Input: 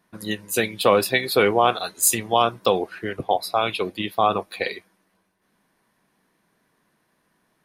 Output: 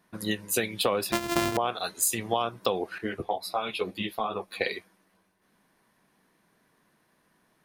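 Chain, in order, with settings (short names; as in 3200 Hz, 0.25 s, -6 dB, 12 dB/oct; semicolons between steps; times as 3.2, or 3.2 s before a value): 1.12–1.57 sample sorter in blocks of 128 samples; compressor 6:1, threshold -23 dBFS, peak gain reduction 11.5 dB; 2.98–4.61 ensemble effect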